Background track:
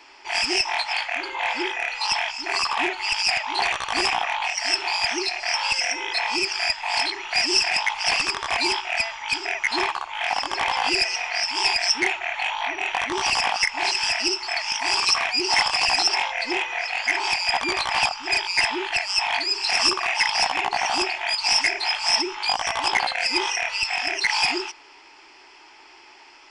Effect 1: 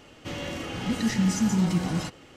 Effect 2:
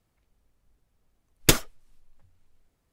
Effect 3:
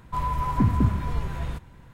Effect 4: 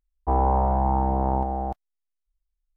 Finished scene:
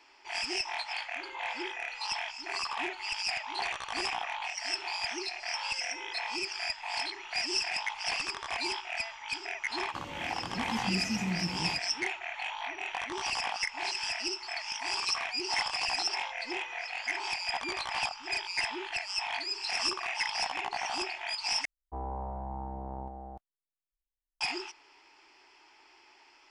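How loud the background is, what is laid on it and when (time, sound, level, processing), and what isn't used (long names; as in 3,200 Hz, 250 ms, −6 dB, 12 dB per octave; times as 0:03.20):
background track −11 dB
0:09.69: mix in 1 −10 dB
0:21.65: overwrite with 4 −16.5 dB
not used: 2, 3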